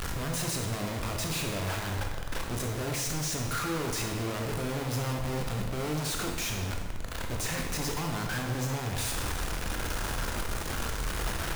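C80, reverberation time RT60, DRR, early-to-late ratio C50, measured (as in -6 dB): 5.5 dB, 1.4 s, 1.0 dB, 3.5 dB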